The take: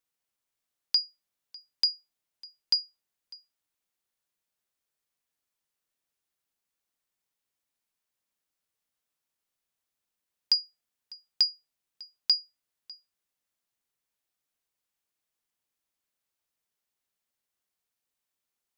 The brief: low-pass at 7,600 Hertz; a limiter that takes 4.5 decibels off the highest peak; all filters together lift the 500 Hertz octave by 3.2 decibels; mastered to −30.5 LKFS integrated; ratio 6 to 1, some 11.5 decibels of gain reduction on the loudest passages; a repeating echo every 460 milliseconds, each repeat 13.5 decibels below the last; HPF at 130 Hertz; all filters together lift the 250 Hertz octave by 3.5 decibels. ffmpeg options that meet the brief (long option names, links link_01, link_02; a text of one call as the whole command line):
ffmpeg -i in.wav -af "highpass=130,lowpass=7600,equalizer=frequency=250:width_type=o:gain=4,equalizer=frequency=500:width_type=o:gain=3,acompressor=threshold=-33dB:ratio=6,alimiter=limit=-19dB:level=0:latency=1,aecho=1:1:460|920:0.211|0.0444,volume=13.5dB" out.wav